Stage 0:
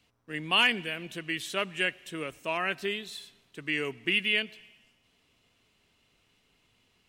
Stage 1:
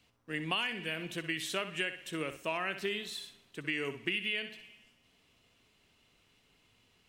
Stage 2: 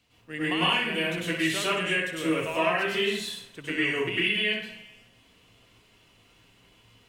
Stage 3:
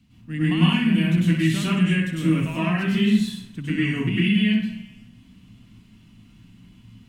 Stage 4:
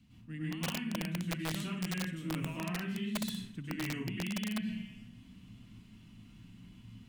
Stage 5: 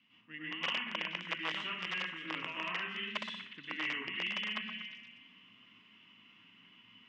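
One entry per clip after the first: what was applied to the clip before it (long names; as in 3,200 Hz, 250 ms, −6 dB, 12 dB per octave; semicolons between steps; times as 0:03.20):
on a send: flutter between parallel walls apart 10.8 metres, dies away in 0.32 s; on the sum: downward compressor 8 to 1, threshold −30 dBFS, peak gain reduction 12 dB
dense smooth reverb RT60 0.6 s, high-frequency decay 0.6×, pre-delay 90 ms, DRR −9 dB
low shelf with overshoot 320 Hz +13.5 dB, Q 3; level −1.5 dB
reversed playback; downward compressor 6 to 1, threshold −30 dBFS, peak gain reduction 17 dB; reversed playback; wrap-around overflow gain 24 dB; level −4.5 dB
loudspeaker in its box 460–4,600 Hz, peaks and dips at 720 Hz −5 dB, 1,100 Hz +6 dB, 2,000 Hz +7 dB, 2,900 Hz +10 dB, 4,200 Hz −10 dB; echo through a band-pass that steps 120 ms, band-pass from 1,100 Hz, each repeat 0.7 octaves, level −6.5 dB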